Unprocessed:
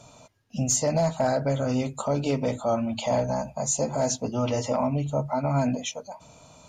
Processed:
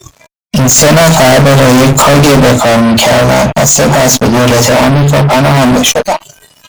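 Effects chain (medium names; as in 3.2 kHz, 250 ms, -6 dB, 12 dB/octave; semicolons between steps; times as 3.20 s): fuzz box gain 40 dB, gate -48 dBFS; 0.76–2.53 s: waveshaping leveller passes 3; spectral noise reduction 18 dB; trim +8 dB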